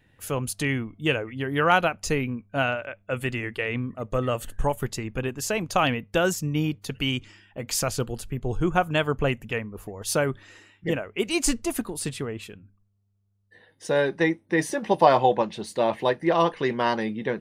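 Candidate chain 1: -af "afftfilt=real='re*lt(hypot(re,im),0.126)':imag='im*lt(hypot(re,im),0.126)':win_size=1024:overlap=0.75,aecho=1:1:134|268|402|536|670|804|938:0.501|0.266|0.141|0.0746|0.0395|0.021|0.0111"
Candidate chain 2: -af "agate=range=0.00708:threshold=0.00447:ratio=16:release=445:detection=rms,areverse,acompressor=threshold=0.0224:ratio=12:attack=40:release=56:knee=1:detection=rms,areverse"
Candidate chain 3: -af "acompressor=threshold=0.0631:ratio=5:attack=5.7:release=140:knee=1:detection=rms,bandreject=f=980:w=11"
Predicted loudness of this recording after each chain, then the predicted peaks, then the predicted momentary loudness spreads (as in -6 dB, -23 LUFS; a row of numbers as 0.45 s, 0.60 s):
-33.5 LUFS, -34.5 LUFS, -31.0 LUFS; -14.0 dBFS, -18.5 dBFS, -15.0 dBFS; 8 LU, 4 LU, 5 LU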